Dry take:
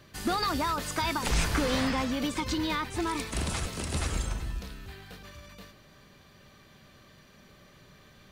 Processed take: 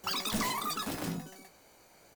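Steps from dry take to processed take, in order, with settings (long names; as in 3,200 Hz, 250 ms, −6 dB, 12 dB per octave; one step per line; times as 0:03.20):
single-tap delay 70 ms −8 dB
change of speed 3.86×
level −5 dB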